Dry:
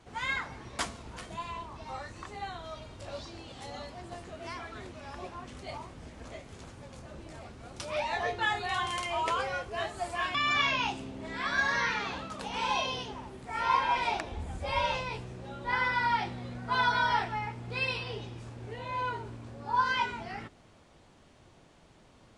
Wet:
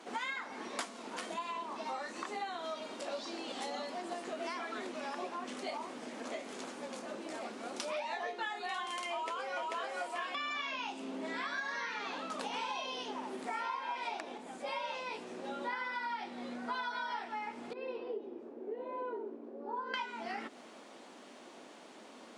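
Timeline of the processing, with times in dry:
9.12–9.63 s: echo throw 440 ms, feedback 30%, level -0.5 dB
17.73–19.94 s: band-pass filter 390 Hz, Q 2.6
whole clip: compression 12:1, threshold -43 dBFS; Chebyshev high-pass 230 Hz, order 4; trim +8 dB

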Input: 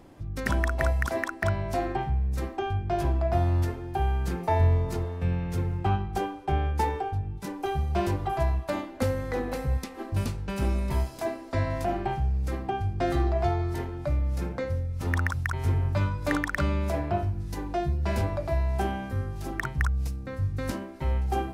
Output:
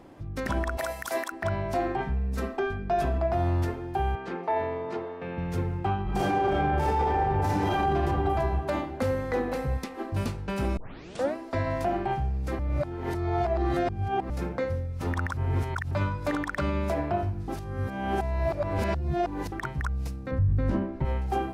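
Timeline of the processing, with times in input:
0.77–1.32 s: RIAA curve recording
2.00–3.18 s: comb 4.5 ms, depth 77%
4.15–5.38 s: band-pass 280–3400 Hz
6.03–7.88 s: reverb throw, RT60 2.4 s, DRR -12 dB
10.77 s: tape start 0.58 s
12.59–14.30 s: reverse
15.37–15.91 s: reverse
17.48–19.52 s: reverse
20.31–21.05 s: RIAA curve playback
whole clip: bass shelf 130 Hz -8 dB; peak limiter -21 dBFS; treble shelf 3.8 kHz -7.5 dB; trim +3.5 dB

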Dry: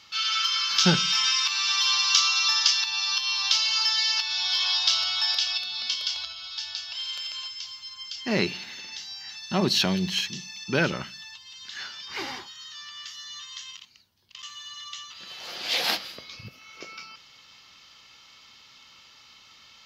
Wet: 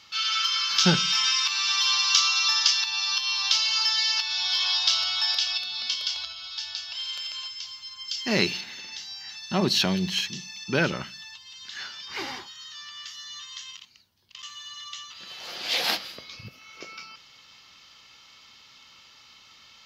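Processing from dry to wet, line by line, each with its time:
8.08–8.61 s: treble shelf 3.3 kHz +8 dB

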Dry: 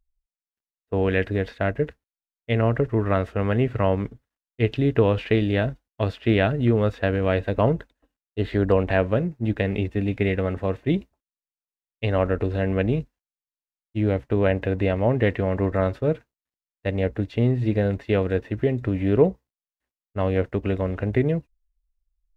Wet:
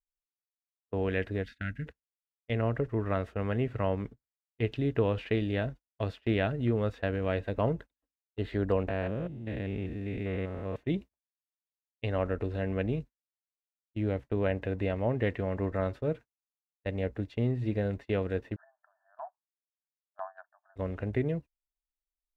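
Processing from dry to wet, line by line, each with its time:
1.43–1.86 s: time-frequency box 280–1300 Hz -21 dB
8.88–10.76 s: spectrogram pixelated in time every 200 ms
18.56–20.76 s: brick-wall FIR band-pass 610–1800 Hz
whole clip: gate -34 dBFS, range -15 dB; trim -8.5 dB

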